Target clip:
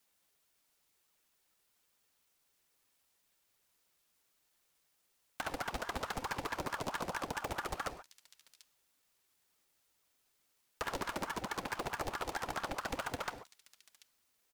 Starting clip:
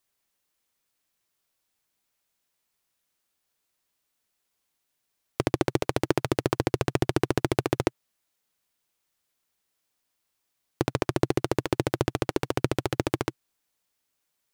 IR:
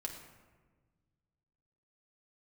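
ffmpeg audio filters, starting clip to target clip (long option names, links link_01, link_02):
-filter_complex "[0:a]acrossover=split=410|3000[link_01][link_02][link_03];[link_02]acompressor=threshold=-30dB:ratio=8[link_04];[link_01][link_04][link_03]amix=inputs=3:normalize=0,aecho=1:1:2.2:0.51,acrossover=split=410|2600[link_05][link_06][link_07];[link_05]acrusher=samples=27:mix=1:aa=0.000001:lfo=1:lforange=16.2:lforate=0.38[link_08];[link_07]aecho=1:1:737:0.0708[link_09];[link_08][link_06][link_09]amix=inputs=3:normalize=0,acompressor=threshold=-30dB:ratio=16,asplit=2[link_10][link_11];[link_11]asetrate=37084,aresample=44100,atempo=1.18921,volume=-5dB[link_12];[link_10][link_12]amix=inputs=2:normalize=0,asplit=2[link_13][link_14];[1:a]atrim=start_sample=2205,atrim=end_sample=6615[link_15];[link_14][link_15]afir=irnorm=-1:irlink=0,volume=-2dB[link_16];[link_13][link_16]amix=inputs=2:normalize=0,asoftclip=type=tanh:threshold=-26dB,aeval=exprs='val(0)*sin(2*PI*850*n/s+850*0.55/4.6*sin(2*PI*4.6*n/s))':channel_layout=same,volume=-1dB"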